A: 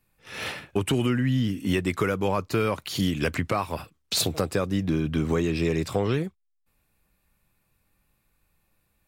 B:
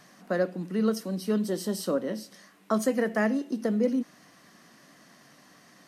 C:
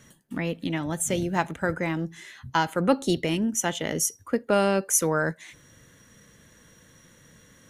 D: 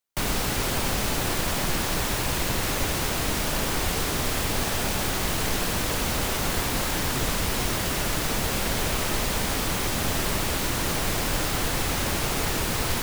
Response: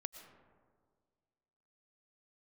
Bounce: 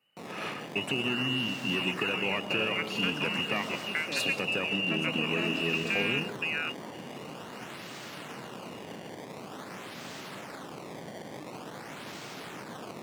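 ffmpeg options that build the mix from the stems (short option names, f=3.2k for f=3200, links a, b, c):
-filter_complex "[0:a]volume=-2.5dB,asplit=2[a][b];[b]volume=-3dB[c];[1:a]adelay=2200,volume=-7dB,asplit=2[d][e];[e]volume=-3.5dB[f];[2:a]adelay=1400,volume=0.5dB[g];[3:a]acrusher=samples=19:mix=1:aa=0.000001:lfo=1:lforange=30.4:lforate=0.47,volume=-14.5dB[h];[a][d][g]amix=inputs=3:normalize=0,lowpass=f=2.6k:t=q:w=0.5098,lowpass=f=2.6k:t=q:w=0.6013,lowpass=f=2.6k:t=q:w=0.9,lowpass=f=2.6k:t=q:w=2.563,afreqshift=-3000,acompressor=threshold=-36dB:ratio=2,volume=0dB[i];[4:a]atrim=start_sample=2205[j];[c][f]amix=inputs=2:normalize=0[k];[k][j]afir=irnorm=-1:irlink=0[l];[h][i][l]amix=inputs=3:normalize=0,highpass=f=140:w=0.5412,highpass=f=140:w=1.3066,highshelf=f=12k:g=-10"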